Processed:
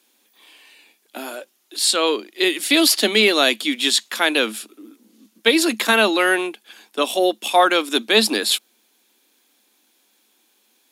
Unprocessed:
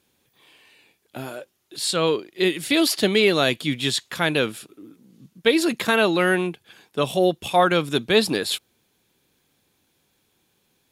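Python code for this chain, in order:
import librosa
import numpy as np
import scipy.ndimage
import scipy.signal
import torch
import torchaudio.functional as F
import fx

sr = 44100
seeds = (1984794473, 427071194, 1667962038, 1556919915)

y = scipy.signal.sosfilt(scipy.signal.cheby1(6, 3, 210.0, 'highpass', fs=sr, output='sos'), x)
y = fx.high_shelf(y, sr, hz=2000.0, db=8.5)
y = y * 10.0 ** (2.5 / 20.0)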